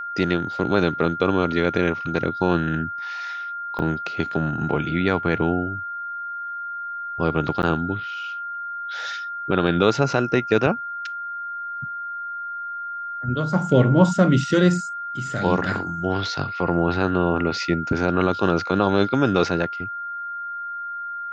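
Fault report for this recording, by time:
whistle 1,400 Hz −28 dBFS
0:03.79: drop-out 3.9 ms
0:07.62–0:07.63: drop-out 9.8 ms

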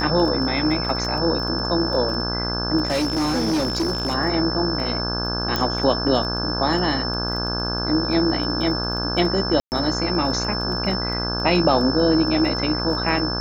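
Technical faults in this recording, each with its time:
mains buzz 60 Hz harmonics 28 −27 dBFS
surface crackle 13 per second −28 dBFS
whistle 5,300 Hz −26 dBFS
0:02.85–0:04.15: clipping −18 dBFS
0:05.56: click −8 dBFS
0:09.60–0:09.72: drop-out 119 ms

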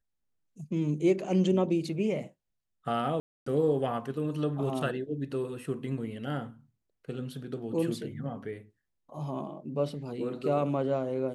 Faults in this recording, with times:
0:03.20–0:03.46: drop-out 264 ms

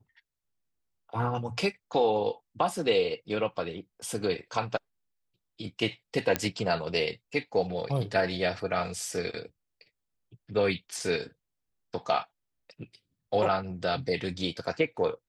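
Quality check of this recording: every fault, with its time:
0:06.36: click −9 dBFS

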